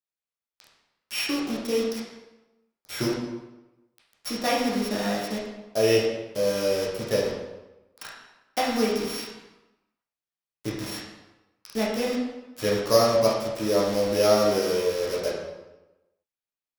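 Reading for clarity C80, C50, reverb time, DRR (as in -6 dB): 4.5 dB, 2.0 dB, 1.0 s, -5.5 dB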